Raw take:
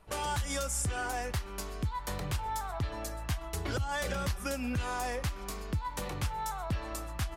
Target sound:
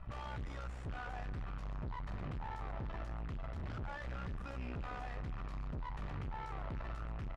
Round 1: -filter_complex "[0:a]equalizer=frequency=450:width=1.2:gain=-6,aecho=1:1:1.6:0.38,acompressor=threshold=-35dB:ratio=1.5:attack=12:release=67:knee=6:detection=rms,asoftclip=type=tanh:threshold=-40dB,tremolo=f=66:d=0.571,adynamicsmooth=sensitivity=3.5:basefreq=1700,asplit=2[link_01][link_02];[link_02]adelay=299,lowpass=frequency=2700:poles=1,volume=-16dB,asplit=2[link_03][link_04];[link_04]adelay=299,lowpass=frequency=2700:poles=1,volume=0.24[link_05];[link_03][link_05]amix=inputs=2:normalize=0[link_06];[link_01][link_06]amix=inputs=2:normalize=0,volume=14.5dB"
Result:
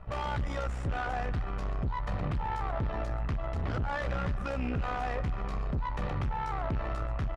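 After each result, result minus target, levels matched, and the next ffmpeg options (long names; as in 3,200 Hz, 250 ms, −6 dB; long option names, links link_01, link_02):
500 Hz band +3.0 dB; soft clipping: distortion −4 dB
-filter_complex "[0:a]equalizer=frequency=450:width=1.2:gain=-16.5,aecho=1:1:1.6:0.38,acompressor=threshold=-35dB:ratio=1.5:attack=12:release=67:knee=6:detection=rms,asoftclip=type=tanh:threshold=-40dB,tremolo=f=66:d=0.571,adynamicsmooth=sensitivity=3.5:basefreq=1700,asplit=2[link_01][link_02];[link_02]adelay=299,lowpass=frequency=2700:poles=1,volume=-16dB,asplit=2[link_03][link_04];[link_04]adelay=299,lowpass=frequency=2700:poles=1,volume=0.24[link_05];[link_03][link_05]amix=inputs=2:normalize=0[link_06];[link_01][link_06]amix=inputs=2:normalize=0,volume=14.5dB"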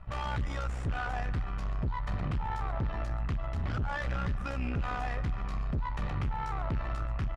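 soft clipping: distortion −4 dB
-filter_complex "[0:a]equalizer=frequency=450:width=1.2:gain=-16.5,aecho=1:1:1.6:0.38,acompressor=threshold=-35dB:ratio=1.5:attack=12:release=67:knee=6:detection=rms,asoftclip=type=tanh:threshold=-51.5dB,tremolo=f=66:d=0.571,adynamicsmooth=sensitivity=3.5:basefreq=1700,asplit=2[link_01][link_02];[link_02]adelay=299,lowpass=frequency=2700:poles=1,volume=-16dB,asplit=2[link_03][link_04];[link_04]adelay=299,lowpass=frequency=2700:poles=1,volume=0.24[link_05];[link_03][link_05]amix=inputs=2:normalize=0[link_06];[link_01][link_06]amix=inputs=2:normalize=0,volume=14.5dB"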